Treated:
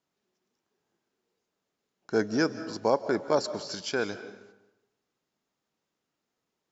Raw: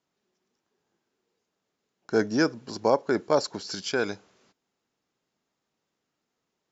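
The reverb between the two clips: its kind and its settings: algorithmic reverb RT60 0.96 s, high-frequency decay 0.7×, pre-delay 115 ms, DRR 12.5 dB; trim -2.5 dB

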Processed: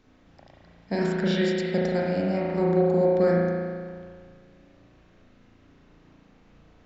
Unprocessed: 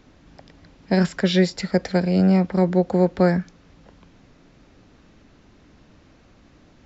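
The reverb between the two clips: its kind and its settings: spring tank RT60 1.9 s, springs 35 ms, chirp 60 ms, DRR -4.5 dB; trim -9 dB

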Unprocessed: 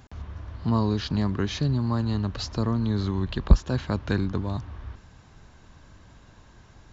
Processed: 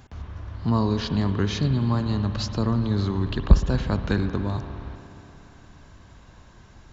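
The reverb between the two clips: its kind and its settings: spring tank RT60 3.2 s, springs 59 ms, chirp 60 ms, DRR 8 dB; trim +1.5 dB

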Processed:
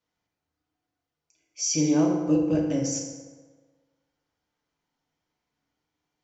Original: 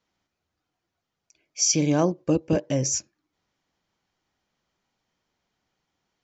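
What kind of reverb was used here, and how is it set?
FDN reverb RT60 1.5 s, low-frequency decay 0.85×, high-frequency decay 0.55×, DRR -1.5 dB; trim -8 dB

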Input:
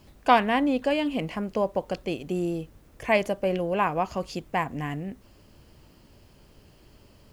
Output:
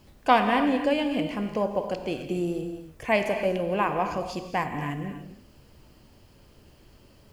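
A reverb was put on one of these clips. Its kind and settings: gated-style reverb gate 320 ms flat, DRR 5.5 dB; trim -1 dB

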